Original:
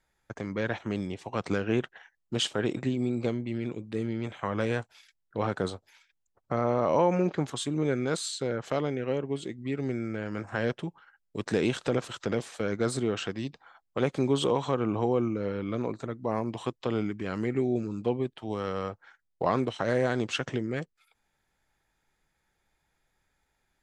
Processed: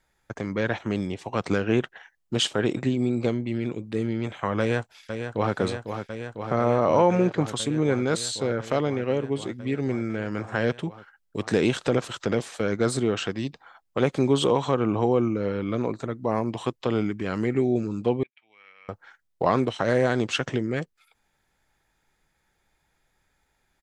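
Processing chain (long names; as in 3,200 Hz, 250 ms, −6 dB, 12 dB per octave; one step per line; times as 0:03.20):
0:04.59–0:05.56: delay throw 500 ms, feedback 85%, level −7.5 dB
0:18.23–0:18.89: resonant band-pass 2,300 Hz, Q 13
level +4.5 dB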